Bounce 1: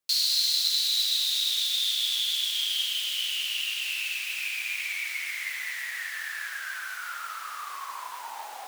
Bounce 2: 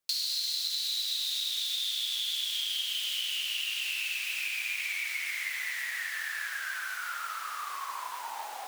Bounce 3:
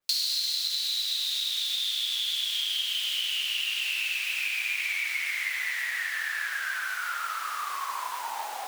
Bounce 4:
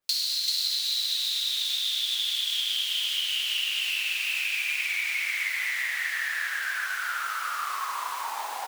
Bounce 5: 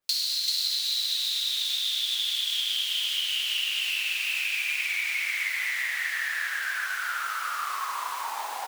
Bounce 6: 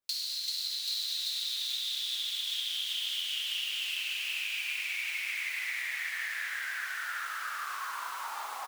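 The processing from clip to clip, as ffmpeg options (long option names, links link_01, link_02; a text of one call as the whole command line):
ffmpeg -i in.wav -af "acompressor=threshold=-29dB:ratio=6" out.wav
ffmpeg -i in.wav -af "adynamicequalizer=threshold=0.00891:dfrequency=4100:dqfactor=0.7:tfrequency=4100:tqfactor=0.7:attack=5:release=100:ratio=0.375:range=2:mode=cutabove:tftype=highshelf,volume=4.5dB" out.wav
ffmpeg -i in.wav -af "aecho=1:1:387:0.596" out.wav
ffmpeg -i in.wav -af anull out.wav
ffmpeg -i in.wav -af "aecho=1:1:784:0.596,volume=-7.5dB" out.wav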